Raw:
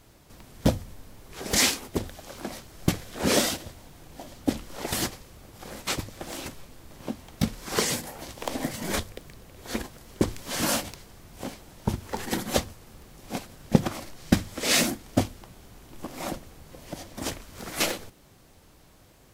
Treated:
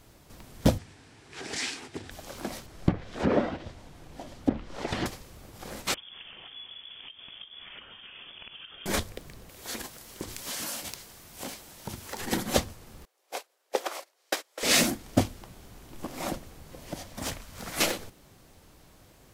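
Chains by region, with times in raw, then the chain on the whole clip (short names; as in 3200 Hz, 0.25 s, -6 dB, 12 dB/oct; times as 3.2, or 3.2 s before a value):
0.78–2.11 compressor 2.5:1, threshold -33 dBFS + speaker cabinet 120–8400 Hz, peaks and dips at 200 Hz -10 dB, 560 Hz -10 dB, 1100 Hz -4 dB, 1700 Hz +4 dB, 2500 Hz +3 dB, 6600 Hz -3 dB
2.66–5.06 treble ducked by the level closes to 1300 Hz, closed at -21 dBFS + high shelf 5500 Hz -7 dB
5.94–8.86 echo 0.27 s -21 dB + compressor 16:1, threshold -41 dBFS + inverted band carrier 3400 Hz
9.49–12.21 tilt +2 dB/oct + compressor 12:1, threshold -31 dBFS
13.05–14.63 steep high-pass 410 Hz + gate -41 dBFS, range -20 dB
16.99–17.76 bell 350 Hz -7.5 dB 0.66 oct + overloaded stage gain 27 dB
whole clip: dry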